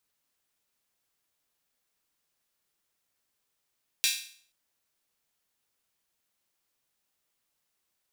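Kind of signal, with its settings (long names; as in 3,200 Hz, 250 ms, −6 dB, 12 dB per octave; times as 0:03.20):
open synth hi-hat length 0.48 s, high-pass 2,900 Hz, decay 0.51 s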